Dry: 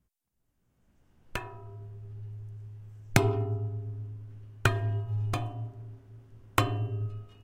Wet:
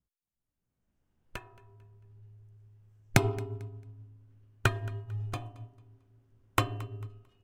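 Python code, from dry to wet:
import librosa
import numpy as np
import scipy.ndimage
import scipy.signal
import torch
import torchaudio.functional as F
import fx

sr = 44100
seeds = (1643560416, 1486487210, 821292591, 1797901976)

p1 = x + fx.echo_feedback(x, sr, ms=223, feedback_pct=35, wet_db=-17, dry=0)
y = fx.upward_expand(p1, sr, threshold_db=-41.0, expansion=1.5)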